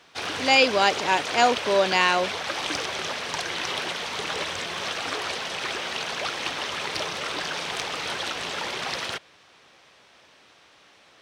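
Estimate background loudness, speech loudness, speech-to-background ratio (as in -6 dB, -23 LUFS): -29.0 LUFS, -21.5 LUFS, 7.5 dB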